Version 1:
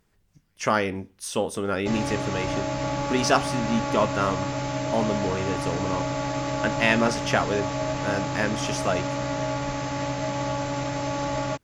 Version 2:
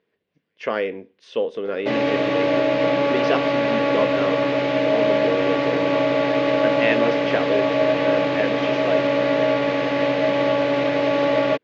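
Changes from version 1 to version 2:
background +11.0 dB
master: add loudspeaker in its box 290–3,500 Hz, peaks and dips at 470 Hz +8 dB, 850 Hz −8 dB, 1,300 Hz −8 dB

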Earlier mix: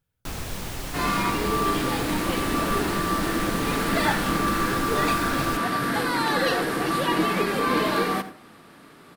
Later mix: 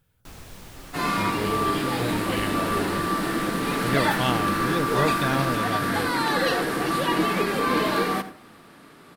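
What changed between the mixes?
speech +11.0 dB
first sound −10.5 dB

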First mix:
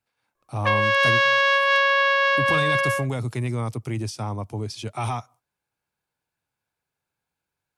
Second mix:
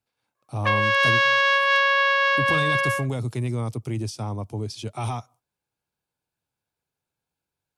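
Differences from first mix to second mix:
speech: add drawn EQ curve 420 Hz 0 dB, 1,900 Hz −6 dB, 3,300 Hz −1 dB
background: add high-pass filter 530 Hz

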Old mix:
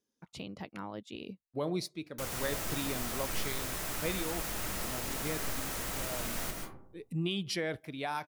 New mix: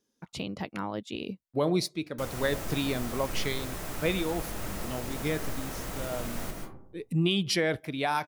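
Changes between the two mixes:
speech +7.5 dB
background: add tilt shelving filter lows +4 dB, about 1,100 Hz

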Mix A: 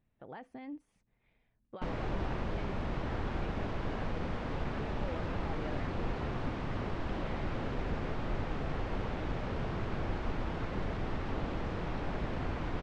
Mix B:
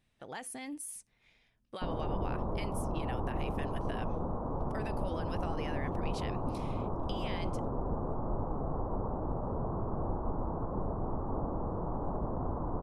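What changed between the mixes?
background: add Butterworth low-pass 1,100 Hz 48 dB per octave
master: remove head-to-tape spacing loss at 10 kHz 44 dB

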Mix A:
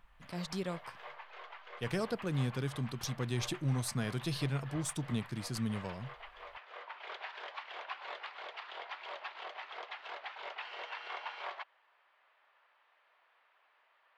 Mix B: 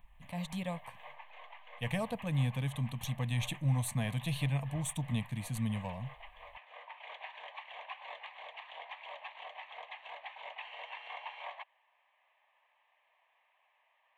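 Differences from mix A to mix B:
speech +4.5 dB
master: add phaser with its sweep stopped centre 1,400 Hz, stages 6

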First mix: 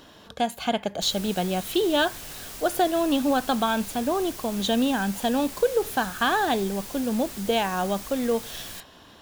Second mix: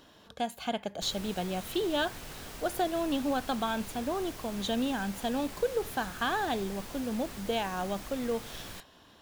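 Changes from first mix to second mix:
speech −7.5 dB
background: add high-shelf EQ 3,900 Hz −10.5 dB

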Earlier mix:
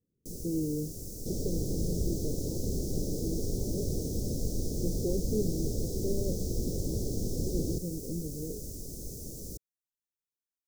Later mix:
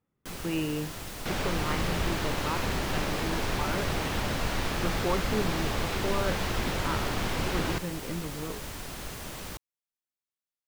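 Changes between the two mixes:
second sound: remove Butterworth band-reject 1,500 Hz, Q 1.9
master: remove elliptic band-stop filter 460–5,700 Hz, stop band 50 dB

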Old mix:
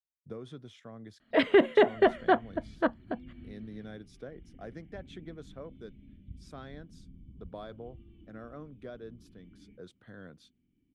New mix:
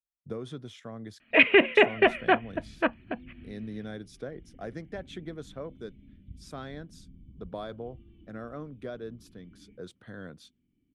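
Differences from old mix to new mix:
speech +5.5 dB
first sound: add low-pass with resonance 2,500 Hz, resonance Q 14
master: add high-shelf EQ 9,000 Hz +7.5 dB

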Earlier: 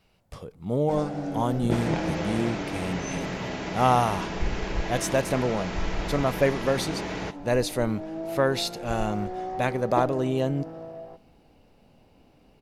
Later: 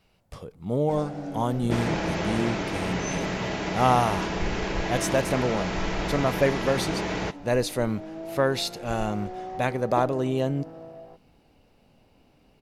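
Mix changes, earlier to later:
first sound: send off
second sound +3.5 dB

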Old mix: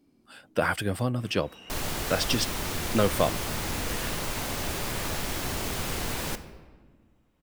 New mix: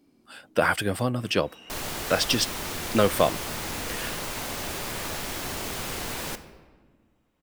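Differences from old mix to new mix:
speech +4.0 dB
master: add low-shelf EQ 180 Hz −6.5 dB

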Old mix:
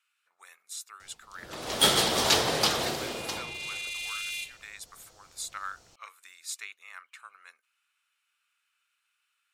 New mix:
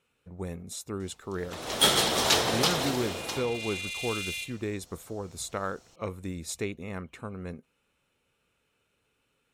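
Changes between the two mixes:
speech: remove Chebyshev high-pass filter 1,300 Hz, order 3
master: add notch filter 4,700 Hz, Q 18

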